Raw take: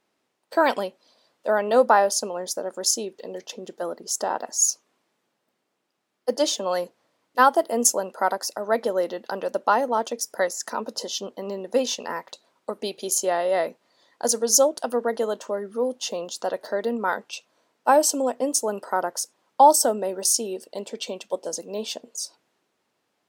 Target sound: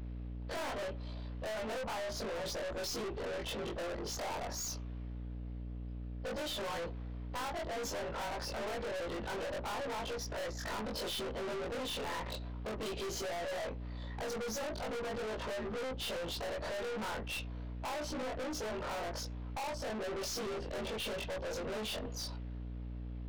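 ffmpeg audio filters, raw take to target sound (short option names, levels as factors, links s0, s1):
-af "afftfilt=real='re':imag='-im':win_size=2048:overlap=0.75,lowpass=f=3700:w=0.5412,lowpass=f=3700:w=1.3066,acompressor=threshold=0.0178:ratio=6,aeval=exprs='val(0)+0.002*(sin(2*PI*60*n/s)+sin(2*PI*2*60*n/s)/2+sin(2*PI*3*60*n/s)/3+sin(2*PI*4*60*n/s)/4+sin(2*PI*5*60*n/s)/5)':c=same,aeval=exprs='(tanh(447*val(0)+0.2)-tanh(0.2))/447':c=same,volume=5.96"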